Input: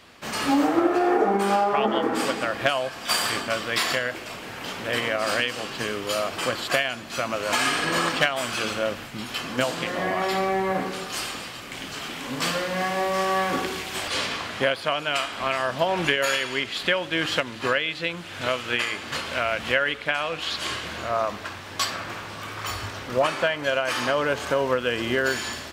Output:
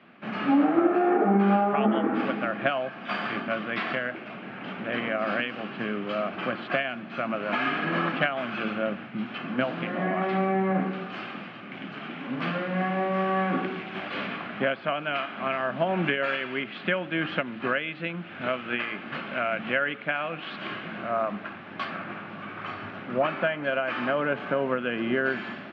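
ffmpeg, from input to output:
-af "highpass=f=140:w=0.5412,highpass=f=140:w=1.3066,equalizer=f=200:t=q:w=4:g=8,equalizer=f=480:t=q:w=4:g=-7,equalizer=f=970:t=q:w=4:g=-8,equalizer=f=1.9k:t=q:w=4:g=-5,lowpass=f=2.4k:w=0.5412,lowpass=f=2.4k:w=1.3066"

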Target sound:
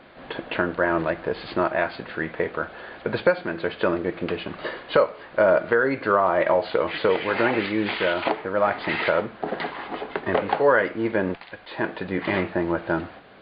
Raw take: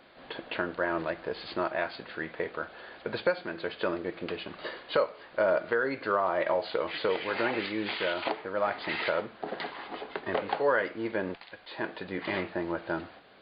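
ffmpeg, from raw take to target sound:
-af "bass=f=250:g=4,treble=f=4k:g=-11,volume=7.5dB"

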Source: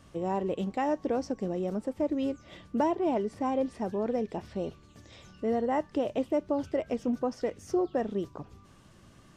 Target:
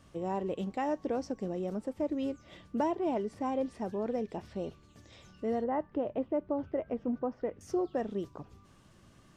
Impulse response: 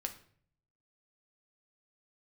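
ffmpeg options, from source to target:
-filter_complex "[0:a]asettb=1/sr,asplit=3[a][b][c];[a]atrim=end=5.644[d];[b]atrim=start=5.64:end=7.61,asetpts=PTS-STARTPTS,afade=t=in:d=0.004:c=qsin,afade=t=out:st=1.966:d=0.004:c=qsin,lowpass=1.7k[e];[c]atrim=start=7.606[f];[d][e]acrossfade=d=0.004:c1=hsin:c2=qsin[g];[g][f]acrossfade=d=0.004:c1=qsin:c2=hsin,volume=-3.5dB"

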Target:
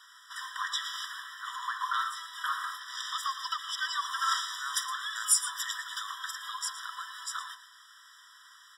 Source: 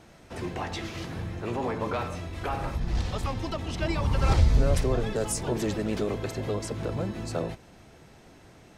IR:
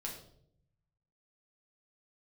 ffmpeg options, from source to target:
-filter_complex "[0:a]asplit=2[a][b];[b]aecho=0:1:115:0.211[c];[a][c]amix=inputs=2:normalize=0,asplit=2[d][e];[e]asetrate=55563,aresample=44100,atempo=0.793701,volume=-18dB[f];[d][f]amix=inputs=2:normalize=0,tiltshelf=f=1.3k:g=-4,afftfilt=real='re*eq(mod(floor(b*sr/1024/980),2),1)':imag='im*eq(mod(floor(b*sr/1024/980),2),1)':win_size=1024:overlap=0.75,volume=5.5dB"

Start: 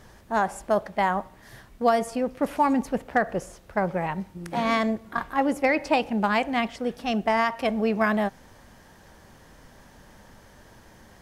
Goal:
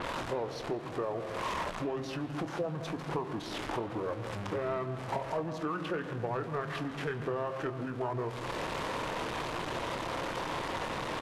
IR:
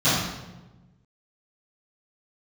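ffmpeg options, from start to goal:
-filter_complex "[0:a]aeval=exprs='val(0)+0.5*0.0316*sgn(val(0))':c=same,lowshelf=f=200:g=-7.5,acompressor=threshold=-34dB:ratio=12,asetrate=25476,aresample=44100,atempo=1.73107,asplit=2[a][b];[b]adelay=26,volume=-12.5dB[c];[a][c]amix=inputs=2:normalize=0,asplit=2[d][e];[1:a]atrim=start_sample=2205,lowpass=3.6k,adelay=127[f];[e][f]afir=irnorm=-1:irlink=0,volume=-31.5dB[g];[d][g]amix=inputs=2:normalize=0,asplit=2[h][i];[i]highpass=f=720:p=1,volume=12dB,asoftclip=type=tanh:threshold=-22dB[j];[h][j]amix=inputs=2:normalize=0,lowpass=f=1.8k:p=1,volume=-6dB,adynamicequalizer=threshold=0.00251:dfrequency=4400:dqfactor=0.7:tfrequency=4400:tqfactor=0.7:attack=5:release=100:ratio=0.375:range=2:mode=cutabove:tftype=highshelf,volume=1.5dB"

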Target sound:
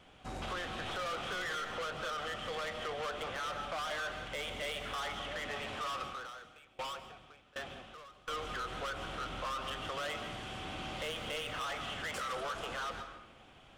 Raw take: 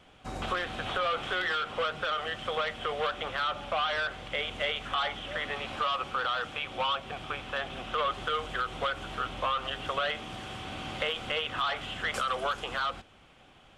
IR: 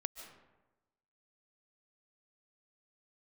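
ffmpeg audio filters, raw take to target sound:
-filter_complex "[0:a]asoftclip=type=tanh:threshold=-33.5dB[a];[1:a]atrim=start_sample=2205[b];[a][b]afir=irnorm=-1:irlink=0,asettb=1/sr,asplit=3[c][d][e];[c]atrim=end=6.024[f];[d]atrim=start=6.02:end=8.28,asetpts=PTS-STARTPTS,afade=t=in:d=0.004:c=qsin,afade=t=out:st=2.256:d=0.004:c=qsin,aeval=exprs='val(0)*pow(10,-24*if(lt(mod(1.3*n/s,1),2*abs(1.3)/1000),1-mod(1.3*n/s,1)/(2*abs(1.3)/1000),(mod(1.3*n/s,1)-2*abs(1.3)/1000)/(1-2*abs(1.3)/1000))/20)':c=same[g];[e]atrim=start=8.276[h];[f][g]acrossfade=d=0.004:c1=hsin:c2=qsin[i];[i][h]acrossfade=d=0.004:c1=qsin:c2=hsin"

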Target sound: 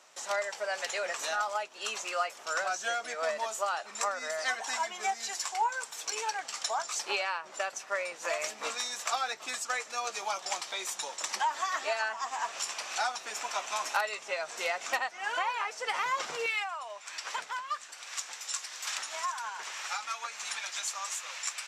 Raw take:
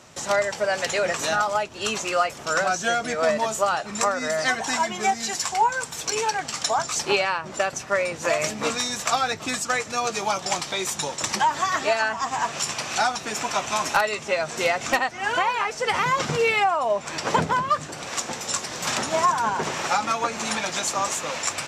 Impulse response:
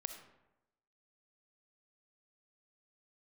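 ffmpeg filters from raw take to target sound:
-af "asetnsamples=n=441:p=0,asendcmd='16.46 highpass f 1400',highpass=610,volume=-8dB"

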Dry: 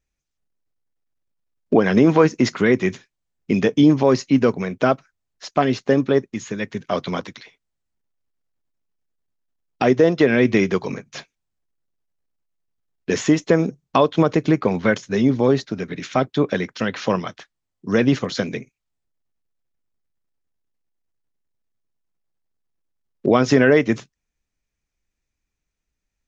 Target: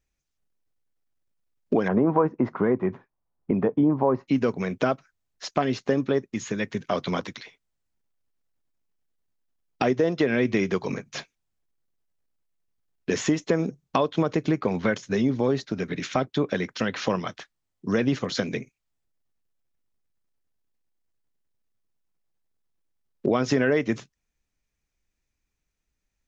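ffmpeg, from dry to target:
-filter_complex "[0:a]asettb=1/sr,asplit=3[a][b][c];[a]atrim=end=1.884[d];[b]atrim=start=1.88:end=4.28,asetpts=PTS-STARTPTS,afade=t=in:d=0.004:c=qsin,afade=t=out:st=2.396:d=0.004:c=qsin,lowpass=f=980:t=q:w=2.2[e];[c]atrim=start=4.276[f];[d][e]acrossfade=d=0.004:c1=hsin:c2=qsin[g];[g][f]acrossfade=d=0.004:c1=qsin:c2=hsin,acompressor=threshold=-24dB:ratio=2"

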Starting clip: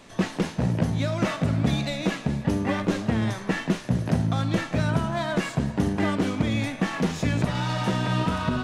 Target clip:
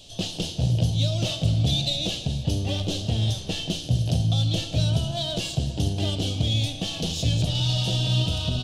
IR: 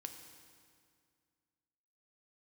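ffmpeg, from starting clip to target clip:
-filter_complex "[0:a]firequalizer=gain_entry='entry(110,0);entry(200,-14);entry(700,-8);entry(1000,-23);entry(2000,-24);entry(3000,6)':delay=0.05:min_phase=1,asplit=2[a][b];[1:a]atrim=start_sample=2205,lowpass=5.5k[c];[b][c]afir=irnorm=-1:irlink=0,volume=4dB[d];[a][d]amix=inputs=2:normalize=0"

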